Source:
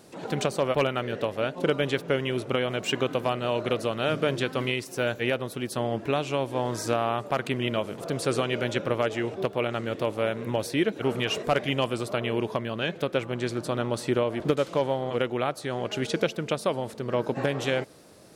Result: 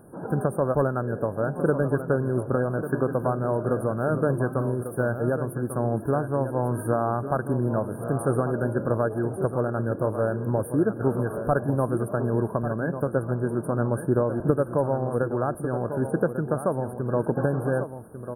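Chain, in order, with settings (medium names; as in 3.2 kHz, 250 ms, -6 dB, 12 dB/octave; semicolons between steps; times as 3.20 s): brick-wall FIR band-stop 1.7–8.7 kHz; bass shelf 180 Hz +10 dB; on a send: delay 1146 ms -10 dB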